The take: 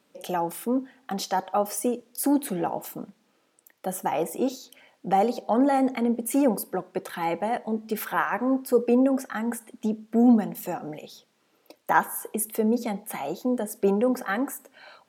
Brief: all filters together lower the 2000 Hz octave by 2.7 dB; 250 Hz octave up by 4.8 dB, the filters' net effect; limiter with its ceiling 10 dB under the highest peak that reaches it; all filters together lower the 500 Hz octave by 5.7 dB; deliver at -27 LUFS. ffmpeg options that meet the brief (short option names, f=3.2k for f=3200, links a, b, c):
-af "equalizer=f=250:t=o:g=7,equalizer=f=500:t=o:g=-8.5,equalizer=f=2k:t=o:g=-3,volume=-0.5dB,alimiter=limit=-16.5dB:level=0:latency=1"